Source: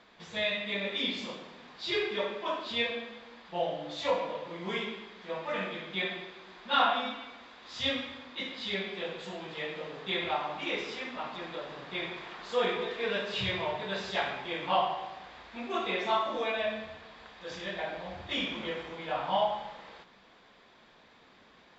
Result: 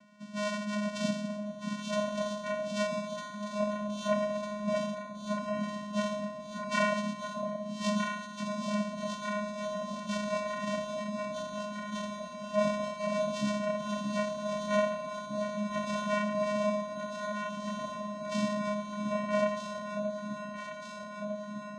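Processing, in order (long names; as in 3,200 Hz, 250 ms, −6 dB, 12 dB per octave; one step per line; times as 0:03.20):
0:04.94–0:05.63: low-pass filter 1,600 Hz
channel vocoder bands 4, square 208 Hz
on a send: delay that swaps between a low-pass and a high-pass 626 ms, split 820 Hz, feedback 84%, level −5 dB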